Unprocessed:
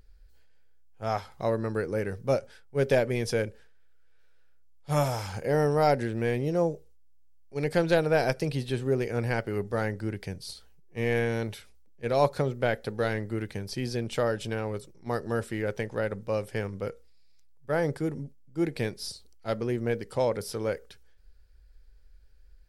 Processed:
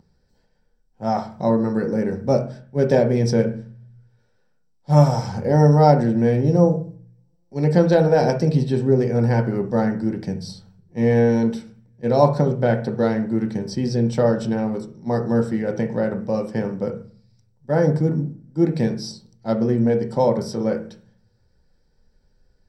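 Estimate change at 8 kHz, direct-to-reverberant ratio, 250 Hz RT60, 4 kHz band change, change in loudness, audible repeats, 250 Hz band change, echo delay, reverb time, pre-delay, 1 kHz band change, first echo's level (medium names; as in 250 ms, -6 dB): no reading, 3.0 dB, 0.75 s, +2.5 dB, +9.5 dB, no echo, +12.5 dB, no echo, 0.45 s, 3 ms, +8.0 dB, no echo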